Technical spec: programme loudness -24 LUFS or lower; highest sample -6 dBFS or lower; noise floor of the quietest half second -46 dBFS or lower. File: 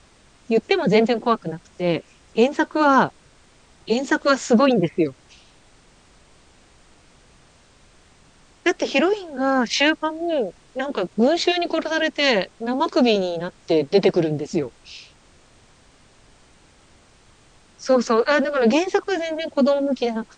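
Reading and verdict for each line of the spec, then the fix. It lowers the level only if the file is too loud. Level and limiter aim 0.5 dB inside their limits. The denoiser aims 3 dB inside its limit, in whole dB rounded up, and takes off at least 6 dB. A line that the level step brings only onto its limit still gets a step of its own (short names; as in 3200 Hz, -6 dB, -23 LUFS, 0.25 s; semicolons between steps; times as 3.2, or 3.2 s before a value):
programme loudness -20.5 LUFS: fail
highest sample -3.5 dBFS: fail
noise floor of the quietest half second -53 dBFS: OK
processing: gain -4 dB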